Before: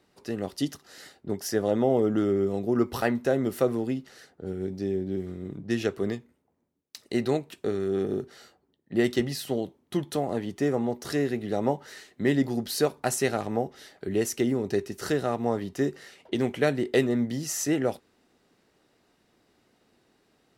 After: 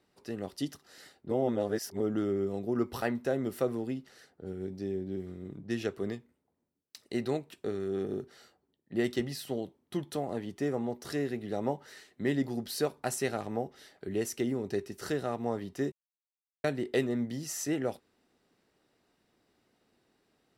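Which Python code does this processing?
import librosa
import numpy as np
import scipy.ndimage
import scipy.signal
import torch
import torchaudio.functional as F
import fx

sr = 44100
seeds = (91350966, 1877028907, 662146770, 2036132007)

y = fx.edit(x, sr, fx.reverse_span(start_s=1.31, length_s=0.69),
    fx.silence(start_s=15.92, length_s=0.72), tone=tone)
y = fx.notch(y, sr, hz=6600.0, q=21.0)
y = F.gain(torch.from_numpy(y), -6.0).numpy()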